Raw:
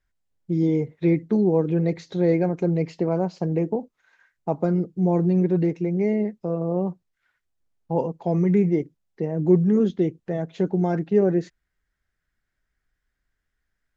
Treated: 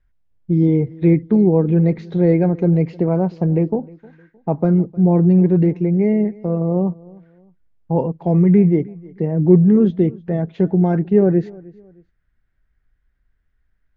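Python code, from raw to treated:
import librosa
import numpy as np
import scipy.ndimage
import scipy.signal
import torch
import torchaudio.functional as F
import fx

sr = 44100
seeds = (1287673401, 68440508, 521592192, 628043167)

y = scipy.signal.sosfilt(scipy.signal.butter(2, 3000.0, 'lowpass', fs=sr, output='sos'), x)
y = fx.low_shelf(y, sr, hz=170.0, db=11.5)
y = fx.echo_feedback(y, sr, ms=309, feedback_pct=33, wet_db=-23.0)
y = F.gain(torch.from_numpy(y), 2.5).numpy()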